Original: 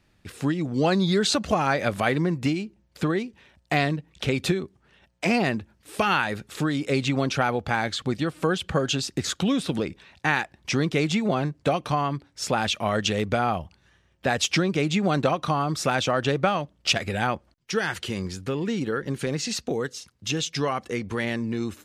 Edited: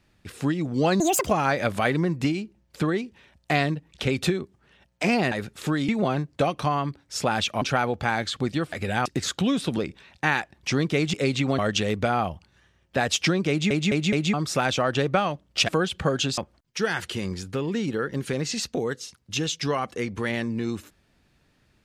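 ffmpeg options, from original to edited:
-filter_complex "[0:a]asplit=16[s0][s1][s2][s3][s4][s5][s6][s7][s8][s9][s10][s11][s12][s13][s14][s15];[s0]atrim=end=1.004[s16];[s1]atrim=start=1:end=1.48,asetpts=PTS-STARTPTS,asetrate=79821,aresample=44100,atrim=end_sample=11695,asetpts=PTS-STARTPTS[s17];[s2]atrim=start=1.476:end=5.532[s18];[s3]atrim=start=6.248:end=6.822[s19];[s4]atrim=start=11.148:end=12.882[s20];[s5]atrim=start=7.268:end=8.382[s21];[s6]atrim=start=16.978:end=17.312[s22];[s7]atrim=start=9.068:end=11.152[s23];[s8]atrim=start=6.818:end=7.272[s24];[s9]atrim=start=12.878:end=15.002[s25];[s10]atrim=start=14.788:end=15.002[s26];[s11]atrim=start=14.788:end=15.002[s27];[s12]atrim=start=14.788:end=15.002[s28];[s13]atrim=start=15.628:end=16.982[s29];[s14]atrim=start=8.378:end=9.072[s30];[s15]atrim=start=17.308[s31];[s16][s17]acrossfade=d=0.004:c1=hsin:c2=hsin[s32];[s32][s18]acrossfade=d=0.004:c1=hsin:c2=hsin[s33];[s33][s19]acrossfade=d=0.004:c1=hsin:c2=hsin[s34];[s34][s20]acrossfade=d=0.004:c1=hsin:c2=hsin[s35];[s35][s21]acrossfade=d=0.004:c1=hsin:c2=hsin[s36];[s36][s22]acrossfade=d=0.004:c1=hsin:c2=hsin[s37];[s37][s23]acrossfade=d=0.004:c1=hsin:c2=hsin[s38];[s38][s24]acrossfade=d=0.004:c1=hsin:c2=hsin[s39];[s39][s25]acrossfade=d=0.004:c1=hsin:c2=hsin[s40];[s40][s26]acrossfade=d=0.004:c1=hsin:c2=hsin[s41];[s41][s27]acrossfade=d=0.004:c1=hsin:c2=hsin[s42];[s42][s28]acrossfade=d=0.004:c1=hsin:c2=hsin[s43];[s43][s29]acrossfade=d=0.004:c1=hsin:c2=hsin[s44];[s44][s30]acrossfade=d=0.004:c1=hsin:c2=hsin[s45];[s45][s31]acrossfade=d=0.004:c1=hsin:c2=hsin"

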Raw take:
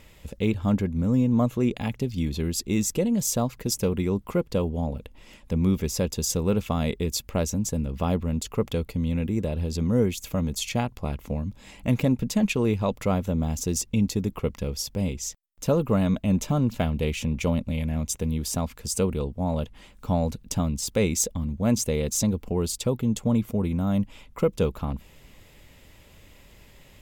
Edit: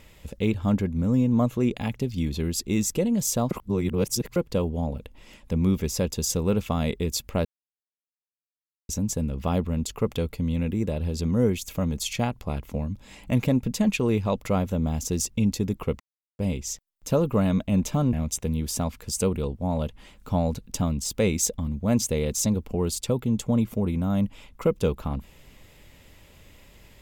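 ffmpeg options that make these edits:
-filter_complex "[0:a]asplit=7[s0][s1][s2][s3][s4][s5][s6];[s0]atrim=end=3.512[s7];[s1]atrim=start=3.508:end=4.362,asetpts=PTS-STARTPTS,areverse[s8];[s2]atrim=start=4.358:end=7.45,asetpts=PTS-STARTPTS,afade=t=out:st=3.088:d=0.004:c=hsin,apad=pad_dur=1.44[s9];[s3]atrim=start=7.45:end=14.56,asetpts=PTS-STARTPTS,afade=t=in:d=0.004:c=hsin,afade=t=out:st=7.106:d=0.004:c=hsin[s10];[s4]atrim=start=14.56:end=14.95,asetpts=PTS-STARTPTS,volume=0[s11];[s5]atrim=start=14.95:end=16.692,asetpts=PTS-STARTPTS,afade=t=in:d=0.004:c=hsin[s12];[s6]atrim=start=17.898[s13];[s7][s8]acrossfade=d=0.004:c1=hsin:c2=hsin[s14];[s9][s10][s11][s12]concat=n=4:v=0:a=1[s15];[s14][s15]acrossfade=d=0.004:c1=hsin:c2=hsin[s16];[s16][s13]acrossfade=d=0.004:c1=hsin:c2=hsin"

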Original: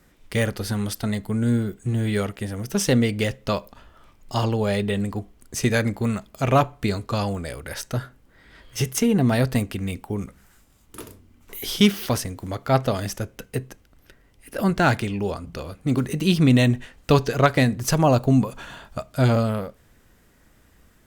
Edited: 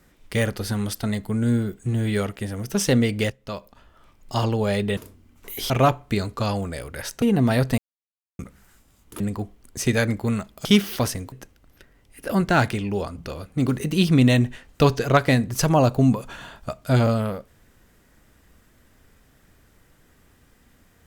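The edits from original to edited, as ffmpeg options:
-filter_complex "[0:a]asplit=10[s0][s1][s2][s3][s4][s5][s6][s7][s8][s9];[s0]atrim=end=3.3,asetpts=PTS-STARTPTS,afade=t=out:st=3.296:d=0.004:c=hsin:silence=0.223872[s10];[s1]atrim=start=3.3:end=4.972,asetpts=PTS-STARTPTS,afade=t=in:d=1.05:silence=0.223872[s11];[s2]atrim=start=11.018:end=11.752[s12];[s3]atrim=start=6.418:end=7.942[s13];[s4]atrim=start=9.038:end=9.6,asetpts=PTS-STARTPTS,afade=t=out:st=0.558:d=0.004:c=hsin[s14];[s5]atrim=start=9.6:end=10.21,asetpts=PTS-STARTPTS,volume=0[s15];[s6]atrim=start=10.21:end=11.022,asetpts=PTS-STARTPTS,afade=t=in:d=0.004:c=hsin[s16];[s7]atrim=start=4.968:end=6.422[s17];[s8]atrim=start=11.748:end=12.422[s18];[s9]atrim=start=13.608[s19];[s10][s11]concat=n=2:v=0:a=1[s20];[s20][s12]acrossfade=d=0.004:c1=hsin:c2=hsin[s21];[s21][s13]acrossfade=d=0.004:c1=hsin:c2=hsin[s22];[s14][s15][s16]concat=n=3:v=0:a=1[s23];[s22][s23]acrossfade=d=0.004:c1=hsin:c2=hsin[s24];[s24][s17]acrossfade=d=0.004:c1=hsin:c2=hsin[s25];[s25][s18]acrossfade=d=0.004:c1=hsin:c2=hsin[s26];[s26][s19]acrossfade=d=0.004:c1=hsin:c2=hsin"

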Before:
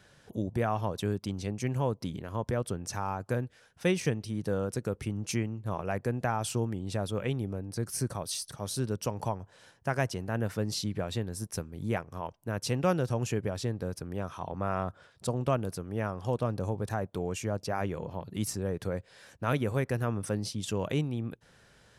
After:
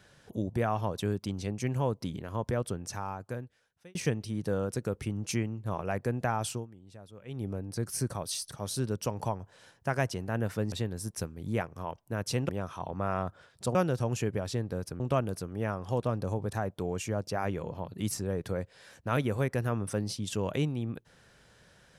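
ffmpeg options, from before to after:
-filter_complex "[0:a]asplit=8[s0][s1][s2][s3][s4][s5][s6][s7];[s0]atrim=end=3.95,asetpts=PTS-STARTPTS,afade=t=out:st=2.63:d=1.32[s8];[s1]atrim=start=3.95:end=6.67,asetpts=PTS-STARTPTS,afade=t=in:d=0.004:c=hsin,afade=t=out:st=2.51:d=0.21:silence=0.133352[s9];[s2]atrim=start=6.67:end=7.26,asetpts=PTS-STARTPTS,volume=0.133[s10];[s3]atrim=start=7.26:end=10.722,asetpts=PTS-STARTPTS,afade=t=in:d=0.21:silence=0.133352[s11];[s4]atrim=start=11.078:end=12.852[s12];[s5]atrim=start=14.098:end=15.362[s13];[s6]atrim=start=12.848:end=14.102[s14];[s7]atrim=start=15.358[s15];[s8][s9][s10][s11]concat=n=4:v=0:a=1[s16];[s16][s12]acrossfade=d=0.004:c1=hsin:c2=hsin[s17];[s17][s13]acrossfade=d=0.004:c1=hsin:c2=hsin[s18];[s18][s14]acrossfade=d=0.004:c1=hsin:c2=hsin[s19];[s19][s15]acrossfade=d=0.004:c1=hsin:c2=hsin"

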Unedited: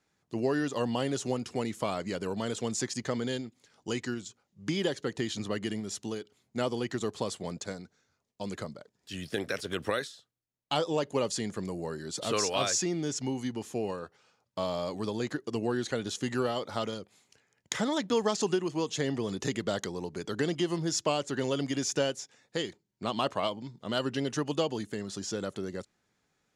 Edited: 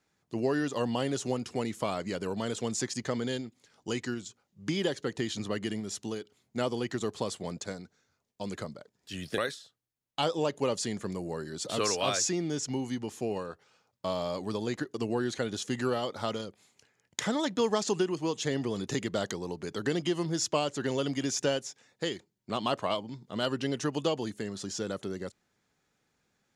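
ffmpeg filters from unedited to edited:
-filter_complex "[0:a]asplit=2[s0][s1];[s0]atrim=end=9.382[s2];[s1]atrim=start=9.908[s3];[s2][s3]acrossfade=d=0.004:c1=hsin:c2=hsin"

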